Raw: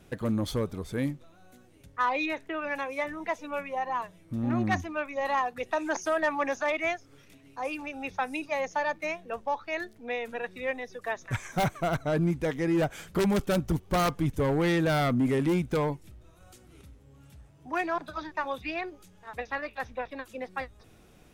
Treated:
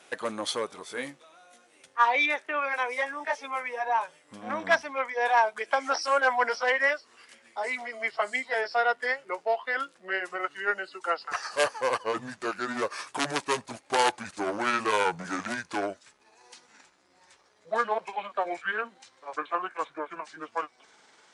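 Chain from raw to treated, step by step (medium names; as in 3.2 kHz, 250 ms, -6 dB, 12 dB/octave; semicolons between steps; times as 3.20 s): pitch bend over the whole clip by -9 st starting unshifted; high-pass 690 Hz 12 dB/octave; trim +8.5 dB; MP3 80 kbps 24 kHz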